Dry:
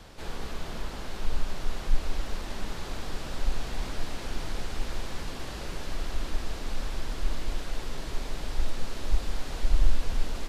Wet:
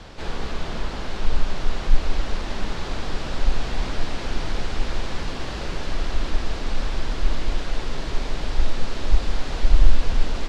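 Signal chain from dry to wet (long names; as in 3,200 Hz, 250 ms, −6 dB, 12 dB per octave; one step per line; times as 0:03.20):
low-pass filter 5,800 Hz 12 dB per octave
level +7.5 dB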